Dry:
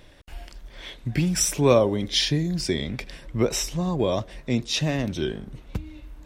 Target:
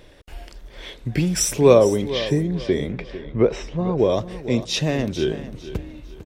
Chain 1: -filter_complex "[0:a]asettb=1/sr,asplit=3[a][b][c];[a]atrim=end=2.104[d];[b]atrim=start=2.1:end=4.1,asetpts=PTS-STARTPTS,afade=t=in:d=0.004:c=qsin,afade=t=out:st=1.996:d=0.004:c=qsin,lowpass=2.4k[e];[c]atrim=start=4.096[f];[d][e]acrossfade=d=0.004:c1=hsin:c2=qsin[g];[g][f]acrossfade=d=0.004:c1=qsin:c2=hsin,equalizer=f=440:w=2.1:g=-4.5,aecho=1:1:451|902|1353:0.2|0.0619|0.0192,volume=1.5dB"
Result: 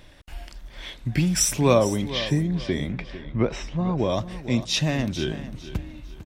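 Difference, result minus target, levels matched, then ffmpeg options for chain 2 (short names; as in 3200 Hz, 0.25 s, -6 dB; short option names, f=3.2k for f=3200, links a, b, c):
500 Hz band -3.5 dB
-filter_complex "[0:a]asettb=1/sr,asplit=3[a][b][c];[a]atrim=end=2.104[d];[b]atrim=start=2.1:end=4.1,asetpts=PTS-STARTPTS,afade=t=in:d=0.004:c=qsin,afade=t=out:st=1.996:d=0.004:c=qsin,lowpass=2.4k[e];[c]atrim=start=4.096[f];[d][e]acrossfade=d=0.004:c1=hsin:c2=qsin[g];[g][f]acrossfade=d=0.004:c1=qsin:c2=hsin,equalizer=f=440:w=2.1:g=6.5,aecho=1:1:451|902|1353:0.2|0.0619|0.0192,volume=1.5dB"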